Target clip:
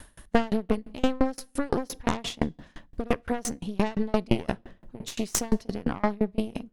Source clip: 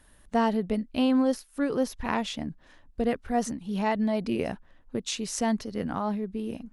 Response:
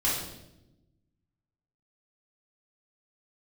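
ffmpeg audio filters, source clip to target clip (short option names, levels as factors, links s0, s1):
-filter_complex "[0:a]acontrast=43,aeval=exprs='0.376*(cos(1*acos(clip(val(0)/0.376,-1,1)))-cos(1*PI/2))+0.15*(cos(4*acos(clip(val(0)/0.376,-1,1)))-cos(4*PI/2))+0.0376*(cos(5*acos(clip(val(0)/0.376,-1,1)))-cos(5*PI/2))':c=same,acompressor=threshold=0.0501:ratio=2,asplit=2[s0][s1];[1:a]atrim=start_sample=2205[s2];[s1][s2]afir=irnorm=-1:irlink=0,volume=0.0422[s3];[s0][s3]amix=inputs=2:normalize=0,aeval=exprs='val(0)*pow(10,-30*if(lt(mod(5.8*n/s,1),2*abs(5.8)/1000),1-mod(5.8*n/s,1)/(2*abs(5.8)/1000),(mod(5.8*n/s,1)-2*abs(5.8)/1000)/(1-2*abs(5.8)/1000))/20)':c=same,volume=2"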